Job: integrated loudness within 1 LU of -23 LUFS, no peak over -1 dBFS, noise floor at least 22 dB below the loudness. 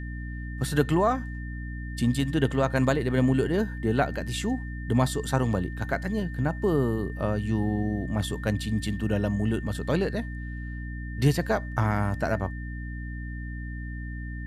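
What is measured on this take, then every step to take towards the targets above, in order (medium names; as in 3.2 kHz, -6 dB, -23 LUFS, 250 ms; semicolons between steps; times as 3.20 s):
hum 60 Hz; highest harmonic 300 Hz; hum level -32 dBFS; steady tone 1.8 kHz; tone level -43 dBFS; loudness -28.0 LUFS; peak level -8.0 dBFS; loudness target -23.0 LUFS
-> hum notches 60/120/180/240/300 Hz; band-stop 1.8 kHz, Q 30; trim +5 dB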